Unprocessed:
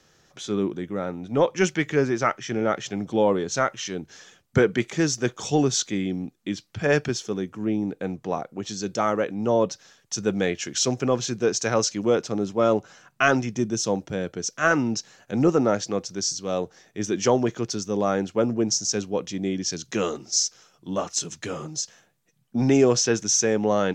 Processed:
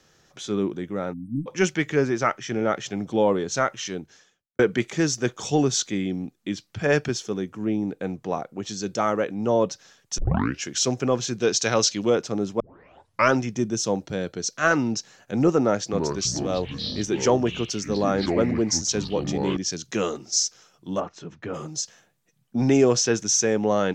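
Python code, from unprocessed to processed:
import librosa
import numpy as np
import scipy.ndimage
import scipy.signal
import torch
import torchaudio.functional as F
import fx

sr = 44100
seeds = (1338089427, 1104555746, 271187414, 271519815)

y = fx.spec_erase(x, sr, start_s=1.13, length_s=0.34, low_hz=320.0, high_hz=8200.0)
y = fx.peak_eq(y, sr, hz=3600.0, db=9.5, octaves=1.1, at=(11.39, 12.1))
y = fx.peak_eq(y, sr, hz=4200.0, db=10.0, octaves=0.3, at=(14.04, 14.93))
y = fx.echo_pitch(y, sr, ms=320, semitones=-6, count=3, db_per_echo=-6.0, at=(15.61, 19.57))
y = fx.lowpass(y, sr, hz=1700.0, slope=12, at=(20.99, 21.53), fade=0.02)
y = fx.edit(y, sr, fx.fade_out_span(start_s=3.94, length_s=0.65, curve='qua'),
    fx.tape_start(start_s=10.18, length_s=0.44),
    fx.tape_start(start_s=12.6, length_s=0.73), tone=tone)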